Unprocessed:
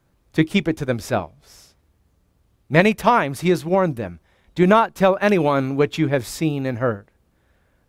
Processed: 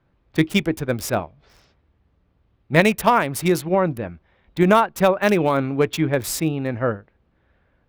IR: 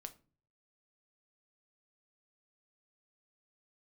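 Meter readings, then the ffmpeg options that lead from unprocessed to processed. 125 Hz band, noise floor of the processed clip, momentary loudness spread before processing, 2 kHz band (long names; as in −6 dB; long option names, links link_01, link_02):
−1.0 dB, −65 dBFS, 10 LU, 0.0 dB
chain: -filter_complex "[0:a]highshelf=frequency=5800:gain=11.5,acrossover=split=3500[link_01][link_02];[link_02]acrusher=bits=4:mix=0:aa=0.5[link_03];[link_01][link_03]amix=inputs=2:normalize=0,volume=-1dB"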